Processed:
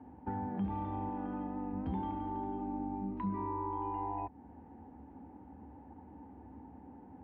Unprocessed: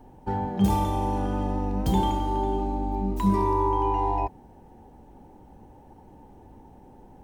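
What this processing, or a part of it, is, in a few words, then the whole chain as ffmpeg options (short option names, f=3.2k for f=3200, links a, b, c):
bass amplifier: -filter_complex "[0:a]acompressor=threshold=-33dB:ratio=3,highpass=f=70:w=0.5412,highpass=f=70:w=1.3066,equalizer=f=74:t=q:w=4:g=6,equalizer=f=130:t=q:w=4:g=-9,equalizer=f=270:t=q:w=4:g=8,equalizer=f=390:t=q:w=4:g=-5,equalizer=f=580:t=q:w=4:g=-5,lowpass=f=2.2k:w=0.5412,lowpass=f=2.2k:w=1.3066,asettb=1/sr,asplit=3[a][b][c];[a]atrim=end=1.094[d];[b]atrim=start=1.09:end=1.73,asetpts=PTS-STARTPTS,afade=t=in:d=0.004:c=qsin,afade=t=out:st=0.636:d=0.004:c=qsin,equalizer=f=99:w=1.5:g=-10[e];[c]atrim=start=1.726[f];[d][e]acrossfade=d=0.004:c1=hsin:c2=qsin[g];[g][f]acrossfade=d=0.004:c1=qsin:c2=hsin,volume=-3dB"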